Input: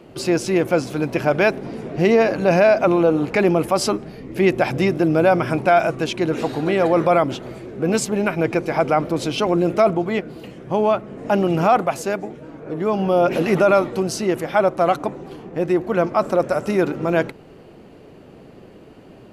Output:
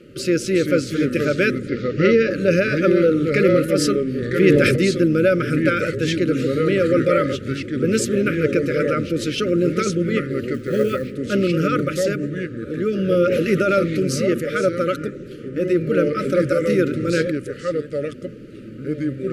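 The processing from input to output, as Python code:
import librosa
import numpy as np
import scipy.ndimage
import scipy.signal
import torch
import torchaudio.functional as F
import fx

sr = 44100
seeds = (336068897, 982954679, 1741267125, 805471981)

y = fx.echo_pitch(x, sr, ms=339, semitones=-3, count=2, db_per_echo=-6.0)
y = fx.lowpass(y, sr, hz=5800.0, slope=24, at=(1.68, 2.31))
y = fx.quant_float(y, sr, bits=4, at=(10.54, 11.12))
y = fx.brickwall_bandstop(y, sr, low_hz=600.0, high_hz=1200.0)
y = fx.sustainer(y, sr, db_per_s=22.0, at=(4.2, 4.76))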